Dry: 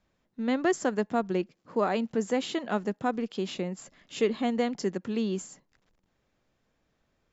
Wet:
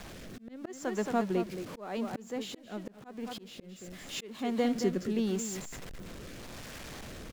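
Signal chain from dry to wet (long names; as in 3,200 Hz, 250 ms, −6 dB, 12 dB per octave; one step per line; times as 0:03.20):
converter with a step at zero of −36.5 dBFS
rotating-speaker cabinet horn 0.85 Hz
single-tap delay 222 ms −10 dB
volume swells 517 ms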